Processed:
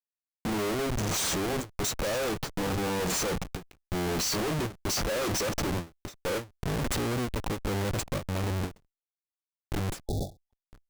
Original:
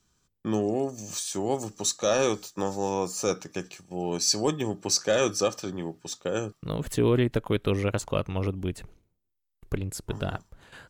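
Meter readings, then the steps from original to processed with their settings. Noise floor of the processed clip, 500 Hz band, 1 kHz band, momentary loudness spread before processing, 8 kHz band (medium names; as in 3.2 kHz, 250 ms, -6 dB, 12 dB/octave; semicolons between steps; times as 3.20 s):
under -85 dBFS, -5.0 dB, -1.0 dB, 11 LU, -3.0 dB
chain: Schmitt trigger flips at -38 dBFS; spectral replace 10.10–10.50 s, 860–3400 Hz before; endings held to a fixed fall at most 230 dB/s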